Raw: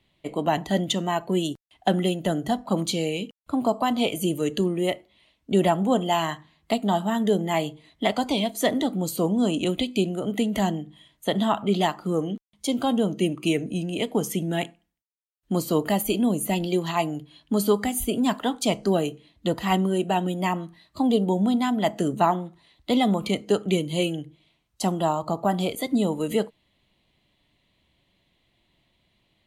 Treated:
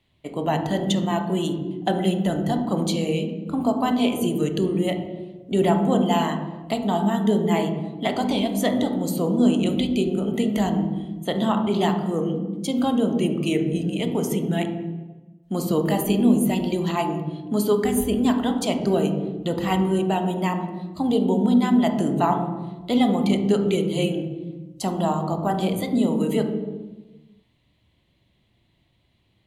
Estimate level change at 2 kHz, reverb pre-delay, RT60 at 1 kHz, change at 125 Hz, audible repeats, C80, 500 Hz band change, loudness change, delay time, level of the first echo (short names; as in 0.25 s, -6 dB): -1.0 dB, 22 ms, 1.1 s, +3.5 dB, none, 9.5 dB, +1.5 dB, +2.0 dB, none, none